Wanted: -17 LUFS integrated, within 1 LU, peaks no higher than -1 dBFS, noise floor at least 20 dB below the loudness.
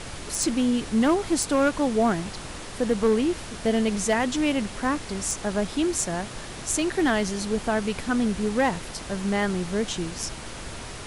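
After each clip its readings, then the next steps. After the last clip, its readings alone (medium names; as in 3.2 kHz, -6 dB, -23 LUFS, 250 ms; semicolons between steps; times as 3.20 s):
clipped samples 0.4%; clipping level -14.0 dBFS; noise floor -38 dBFS; noise floor target -46 dBFS; loudness -25.5 LUFS; peak level -14.0 dBFS; loudness target -17.0 LUFS
-> clip repair -14 dBFS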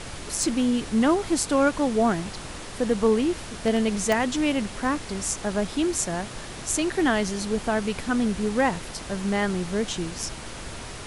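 clipped samples 0.0%; noise floor -38 dBFS; noise floor target -45 dBFS
-> noise print and reduce 7 dB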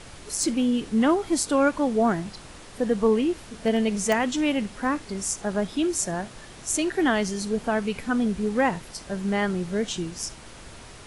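noise floor -45 dBFS; noise floor target -46 dBFS
-> noise print and reduce 6 dB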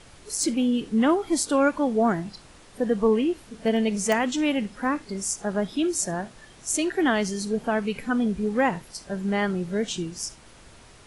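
noise floor -50 dBFS; loudness -25.5 LUFS; peak level -6.5 dBFS; loudness target -17.0 LUFS
-> trim +8.5 dB; peak limiter -1 dBFS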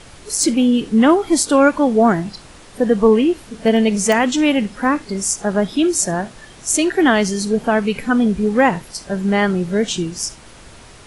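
loudness -17.0 LUFS; peak level -1.0 dBFS; noise floor -42 dBFS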